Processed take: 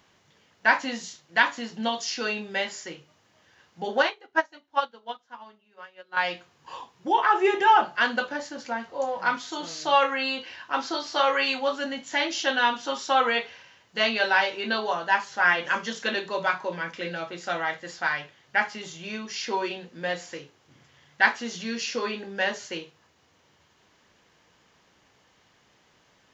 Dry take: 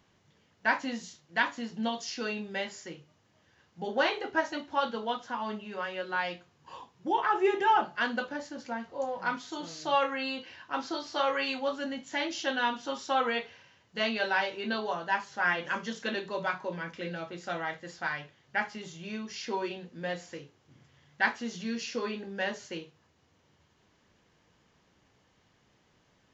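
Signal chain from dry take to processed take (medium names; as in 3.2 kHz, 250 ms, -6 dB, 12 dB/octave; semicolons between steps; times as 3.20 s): bass shelf 350 Hz -9 dB; 4.02–6.17 s: upward expansion 2.5:1, over -42 dBFS; trim +7.5 dB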